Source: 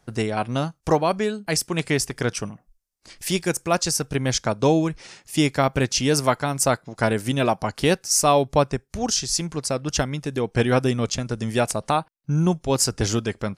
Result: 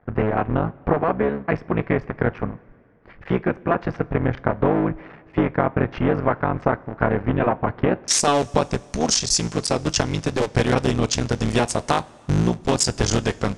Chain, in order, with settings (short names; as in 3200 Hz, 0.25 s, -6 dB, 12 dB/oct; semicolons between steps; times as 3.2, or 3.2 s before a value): cycle switcher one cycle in 3, muted; LPF 1900 Hz 24 dB/oct, from 8.08 s 8600 Hz; compressor 4:1, threshold -22 dBFS, peak gain reduction 8 dB; two-slope reverb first 0.24 s, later 2.7 s, from -18 dB, DRR 15 dB; gain +6.5 dB